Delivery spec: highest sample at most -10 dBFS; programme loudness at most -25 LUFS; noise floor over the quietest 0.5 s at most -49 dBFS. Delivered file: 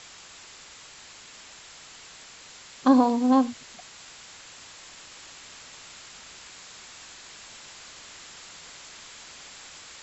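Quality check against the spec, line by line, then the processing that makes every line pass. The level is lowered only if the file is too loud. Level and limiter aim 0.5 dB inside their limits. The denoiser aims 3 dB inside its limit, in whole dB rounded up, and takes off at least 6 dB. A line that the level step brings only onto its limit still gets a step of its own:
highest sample -7.5 dBFS: fail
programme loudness -22.0 LUFS: fail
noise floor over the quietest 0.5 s -48 dBFS: fail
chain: gain -3.5 dB

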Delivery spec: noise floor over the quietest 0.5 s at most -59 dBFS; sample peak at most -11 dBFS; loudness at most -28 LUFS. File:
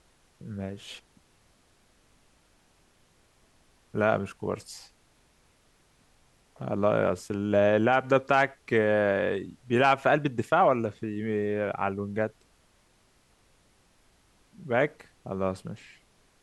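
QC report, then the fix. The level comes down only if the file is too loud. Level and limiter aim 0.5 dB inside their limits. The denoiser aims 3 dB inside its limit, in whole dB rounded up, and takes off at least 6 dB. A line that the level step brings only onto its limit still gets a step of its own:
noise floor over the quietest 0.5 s -64 dBFS: OK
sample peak -8.5 dBFS: fail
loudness -27.0 LUFS: fail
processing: gain -1.5 dB; limiter -11.5 dBFS

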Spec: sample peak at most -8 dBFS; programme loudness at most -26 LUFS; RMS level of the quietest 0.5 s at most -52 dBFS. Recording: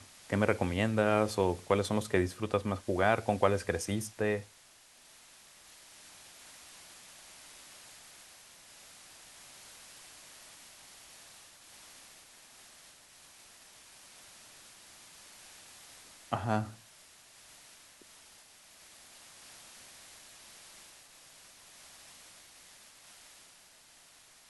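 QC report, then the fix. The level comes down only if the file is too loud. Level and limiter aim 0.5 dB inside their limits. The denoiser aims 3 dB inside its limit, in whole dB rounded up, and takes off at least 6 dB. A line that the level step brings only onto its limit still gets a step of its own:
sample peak -11.0 dBFS: OK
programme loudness -31.5 LUFS: OK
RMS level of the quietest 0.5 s -60 dBFS: OK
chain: none

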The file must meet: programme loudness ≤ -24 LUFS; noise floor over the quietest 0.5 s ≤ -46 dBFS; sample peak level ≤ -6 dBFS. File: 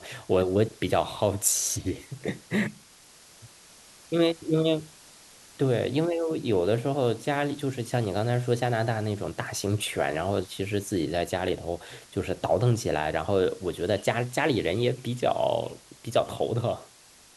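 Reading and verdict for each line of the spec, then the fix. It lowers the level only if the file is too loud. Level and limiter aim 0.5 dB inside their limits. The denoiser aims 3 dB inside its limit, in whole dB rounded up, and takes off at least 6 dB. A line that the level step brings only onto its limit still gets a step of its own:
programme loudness -27.5 LUFS: OK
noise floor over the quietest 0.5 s -54 dBFS: OK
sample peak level -9.0 dBFS: OK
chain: none

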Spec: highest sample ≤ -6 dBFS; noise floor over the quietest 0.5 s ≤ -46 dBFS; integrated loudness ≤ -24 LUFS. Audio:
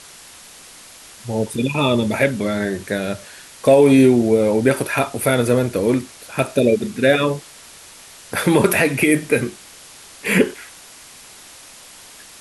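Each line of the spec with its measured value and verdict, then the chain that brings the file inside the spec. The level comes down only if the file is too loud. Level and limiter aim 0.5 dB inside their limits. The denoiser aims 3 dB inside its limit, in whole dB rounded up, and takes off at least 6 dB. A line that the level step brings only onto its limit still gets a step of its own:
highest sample -3.0 dBFS: fail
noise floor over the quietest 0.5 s -42 dBFS: fail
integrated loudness -18.0 LUFS: fail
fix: gain -6.5 dB

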